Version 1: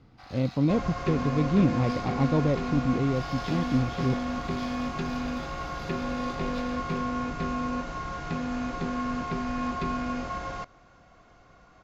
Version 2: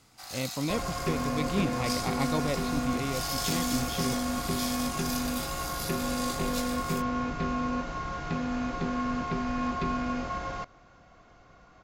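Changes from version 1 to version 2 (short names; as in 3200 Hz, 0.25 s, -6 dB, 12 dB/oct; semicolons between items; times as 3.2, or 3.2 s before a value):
speech: add tilt shelf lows -10 dB, about 870 Hz; first sound: remove air absorption 280 m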